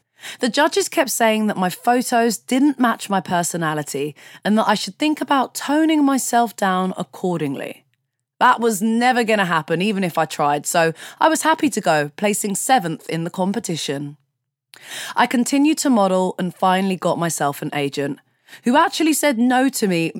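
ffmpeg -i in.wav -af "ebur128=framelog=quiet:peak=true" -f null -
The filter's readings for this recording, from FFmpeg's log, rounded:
Integrated loudness:
  I:         -18.8 LUFS
  Threshold: -29.1 LUFS
Loudness range:
  LRA:         2.4 LU
  Threshold: -39.3 LUFS
  LRA low:   -20.6 LUFS
  LRA high:  -18.2 LUFS
True peak:
  Peak:       -1.3 dBFS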